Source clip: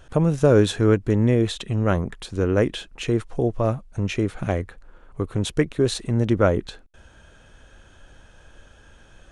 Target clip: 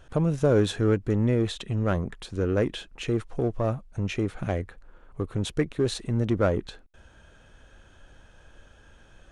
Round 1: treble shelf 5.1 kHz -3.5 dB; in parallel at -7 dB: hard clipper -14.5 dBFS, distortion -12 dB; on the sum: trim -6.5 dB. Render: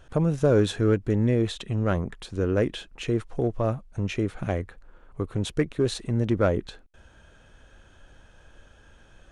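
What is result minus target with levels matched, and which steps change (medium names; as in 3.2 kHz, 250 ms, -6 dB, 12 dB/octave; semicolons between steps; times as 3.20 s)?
hard clipper: distortion -6 dB
change: hard clipper -20.5 dBFS, distortion -6 dB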